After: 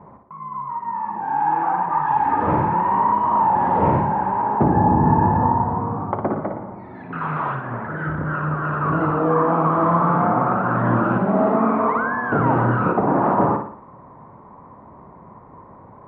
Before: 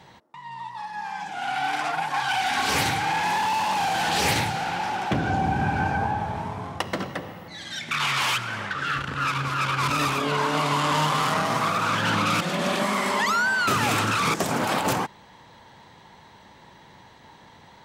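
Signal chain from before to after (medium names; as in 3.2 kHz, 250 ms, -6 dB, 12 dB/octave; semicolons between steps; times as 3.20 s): low-pass 1 kHz 24 dB/octave; tape speed +11%; flutter echo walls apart 9.9 m, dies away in 0.53 s; trim +7.5 dB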